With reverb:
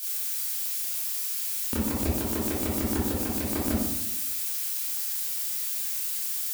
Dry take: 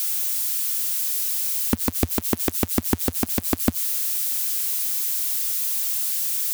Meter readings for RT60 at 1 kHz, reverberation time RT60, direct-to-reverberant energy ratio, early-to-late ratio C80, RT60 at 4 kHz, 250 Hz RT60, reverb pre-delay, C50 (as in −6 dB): 0.85 s, 0.90 s, −9.5 dB, 3.0 dB, 0.50 s, 1.0 s, 21 ms, −0.5 dB